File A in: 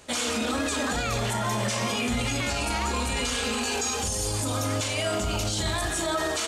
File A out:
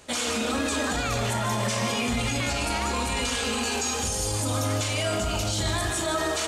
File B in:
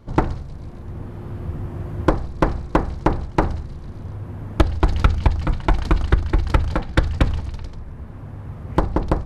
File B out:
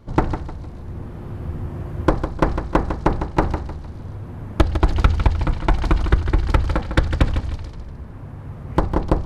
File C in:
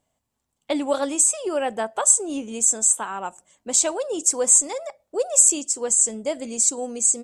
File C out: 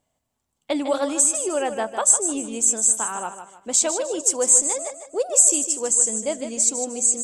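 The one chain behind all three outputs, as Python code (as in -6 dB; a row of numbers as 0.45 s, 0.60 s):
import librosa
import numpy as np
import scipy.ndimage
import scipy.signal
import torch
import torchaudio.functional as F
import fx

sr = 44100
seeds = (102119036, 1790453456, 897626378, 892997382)

y = fx.echo_feedback(x, sr, ms=153, feedback_pct=34, wet_db=-9.5)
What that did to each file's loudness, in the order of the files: +0.5 LU, +0.5 LU, +0.5 LU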